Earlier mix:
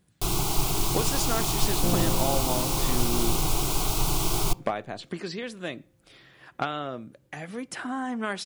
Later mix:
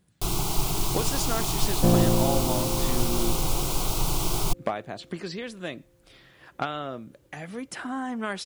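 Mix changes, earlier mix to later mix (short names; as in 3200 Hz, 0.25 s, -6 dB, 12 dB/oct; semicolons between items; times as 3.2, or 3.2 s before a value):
second sound +8.0 dB; reverb: off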